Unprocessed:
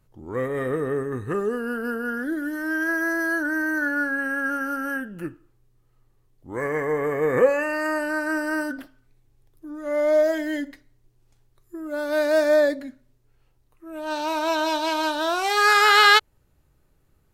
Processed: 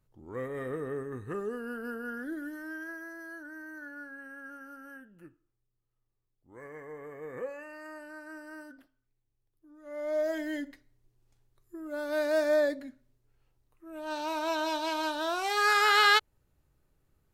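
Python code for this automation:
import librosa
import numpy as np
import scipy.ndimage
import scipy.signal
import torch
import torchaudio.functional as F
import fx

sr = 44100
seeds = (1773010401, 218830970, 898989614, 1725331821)

y = fx.gain(x, sr, db=fx.line((2.42, -10.0), (3.1, -20.0), (9.73, -20.0), (10.38, -7.5)))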